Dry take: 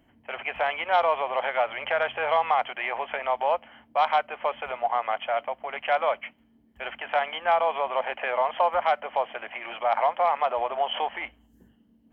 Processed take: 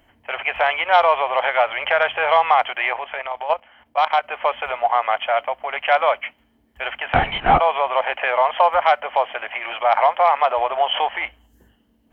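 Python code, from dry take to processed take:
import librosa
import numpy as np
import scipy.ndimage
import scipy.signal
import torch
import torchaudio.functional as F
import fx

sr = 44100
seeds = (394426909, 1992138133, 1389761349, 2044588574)

y = fx.peak_eq(x, sr, hz=200.0, db=-12.0, octaves=1.8)
y = fx.level_steps(y, sr, step_db=12, at=(2.93, 4.24))
y = fx.lpc_vocoder(y, sr, seeds[0], excitation='whisper', order=8, at=(7.14, 7.6))
y = y * 10.0 ** (9.0 / 20.0)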